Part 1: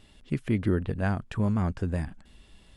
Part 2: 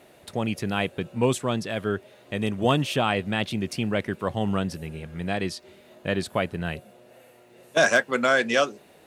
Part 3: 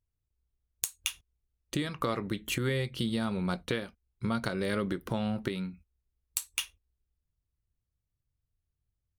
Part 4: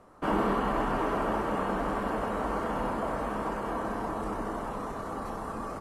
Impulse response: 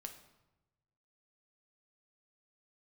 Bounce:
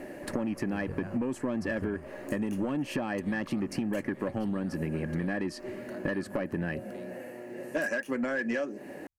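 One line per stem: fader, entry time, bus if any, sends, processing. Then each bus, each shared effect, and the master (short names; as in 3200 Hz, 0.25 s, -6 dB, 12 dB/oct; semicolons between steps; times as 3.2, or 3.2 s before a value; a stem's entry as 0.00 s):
-3.5 dB, 0.00 s, bus A, no send, no echo send, dB-linear tremolo 1.1 Hz, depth 31 dB
+1.0 dB, 0.00 s, bus A, no send, no echo send, bell 660 Hz -13 dB 0.24 oct; compressor 6:1, threshold -32 dBFS, peak gain reduction 14.5 dB; small resonant body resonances 290/590/1700 Hz, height 17 dB, ringing for 20 ms
-15.0 dB, 1.45 s, no bus, no send, echo send -20.5 dB, negative-ratio compressor -33 dBFS, ratio -0.5
-18.0 dB, 0.00 s, bus A, no send, no echo send, half-wave rectifier
bus A: 0.0 dB, soft clip -16.5 dBFS, distortion -14 dB; compressor, threshold -28 dBFS, peak gain reduction 8 dB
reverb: off
echo: echo 0.281 s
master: bell 3600 Hz -14.5 dB 0.25 oct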